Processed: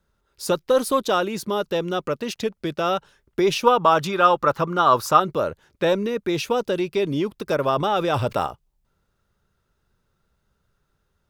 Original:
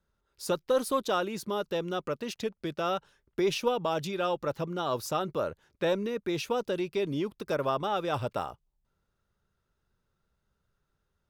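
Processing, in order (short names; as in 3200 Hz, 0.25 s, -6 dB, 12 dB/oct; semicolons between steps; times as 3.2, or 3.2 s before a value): 3.64–5.2 bell 1200 Hz +11.5 dB 1 oct; 7.73–8.47 fast leveller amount 50%; gain +7.5 dB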